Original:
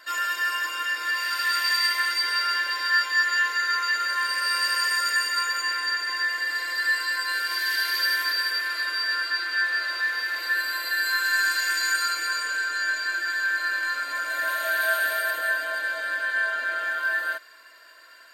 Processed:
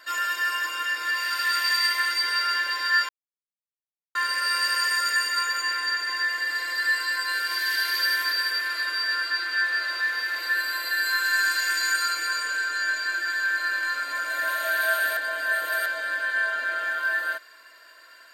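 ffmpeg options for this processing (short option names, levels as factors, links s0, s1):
-filter_complex "[0:a]asplit=5[s0][s1][s2][s3][s4];[s0]atrim=end=3.09,asetpts=PTS-STARTPTS,afade=t=out:st=3.086:d=0.004:c=hsin[s5];[s1]atrim=start=3.09:end=4.15,asetpts=PTS-STARTPTS,volume=0[s6];[s2]atrim=start=4.15:end=15.172,asetpts=PTS-STARTPTS,afade=t=in:d=0.004:c=hsin[s7];[s3]atrim=start=15.168:end=15.862,asetpts=PTS-STARTPTS,areverse[s8];[s4]atrim=start=15.858[s9];[s5][s6][s7]concat=n=3:v=0:a=1[s10];[s10][s8]acrossfade=d=0.004:c1=hsin:c2=hsin[s11];[s11][s9]acrossfade=d=0.004:c1=hsin:c2=hsin"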